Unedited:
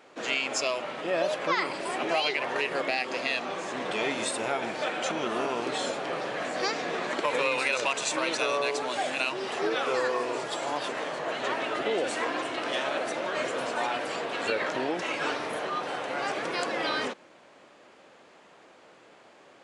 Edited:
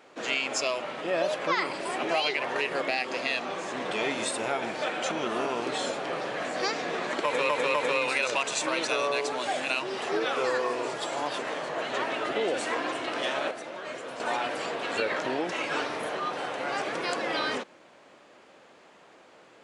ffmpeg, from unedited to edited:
-filter_complex "[0:a]asplit=5[s0][s1][s2][s3][s4];[s0]atrim=end=7.492[s5];[s1]atrim=start=7.238:end=7.492[s6];[s2]atrim=start=7.238:end=13.012[s7];[s3]atrim=start=13.008:end=13.702,asetpts=PTS-STARTPTS,volume=0.422[s8];[s4]atrim=start=13.698[s9];[s5][s6]acrossfade=d=0.004:c1=hsin:c2=hsin[s10];[s10][s7]acrossfade=d=0.004:c1=hsin:c2=hsin[s11];[s11][s8]acrossfade=d=0.004:c1=hsin:c2=hsin[s12];[s12][s9]acrossfade=d=0.004:c1=hsin:c2=hsin"

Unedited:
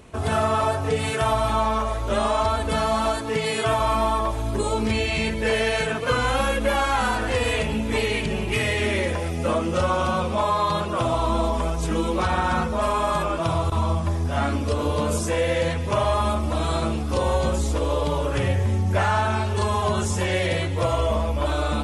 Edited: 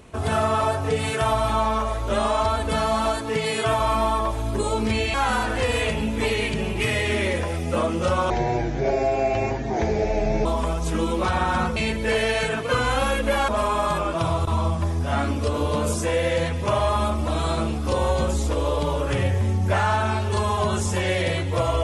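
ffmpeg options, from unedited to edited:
-filter_complex "[0:a]asplit=6[s0][s1][s2][s3][s4][s5];[s0]atrim=end=5.142[s6];[s1]atrim=start=6.858:end=10.024[s7];[s2]atrim=start=10.02:end=11.42,asetpts=PTS-STARTPTS,asetrate=28665,aresample=44100[s8];[s3]atrim=start=11.416:end=12.732[s9];[s4]atrim=start=5.138:end=6.862[s10];[s5]atrim=start=12.728[s11];[s6][s7]acrossfade=d=0.004:c1=hsin:c2=hsin[s12];[s12][s8]acrossfade=d=0.004:c1=hsin:c2=hsin[s13];[s13][s9]acrossfade=d=0.004:c1=hsin:c2=hsin[s14];[s14][s10]acrossfade=d=0.004:c1=hsin:c2=hsin[s15];[s15][s11]acrossfade=d=0.004:c1=hsin:c2=hsin"

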